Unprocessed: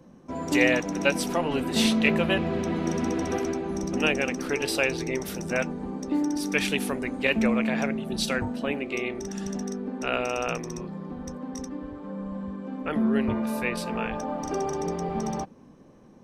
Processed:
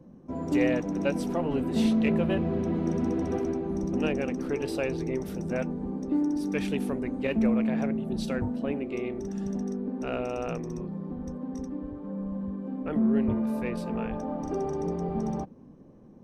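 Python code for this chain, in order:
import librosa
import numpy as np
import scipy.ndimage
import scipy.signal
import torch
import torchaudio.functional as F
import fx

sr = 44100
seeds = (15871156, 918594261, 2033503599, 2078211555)

p1 = fx.tilt_shelf(x, sr, db=7.5, hz=890.0)
p2 = 10.0 ** (-22.0 / 20.0) * np.tanh(p1 / 10.0 ** (-22.0 / 20.0))
p3 = p1 + F.gain(torch.from_numpy(p2), -10.5).numpy()
y = F.gain(torch.from_numpy(p3), -7.5).numpy()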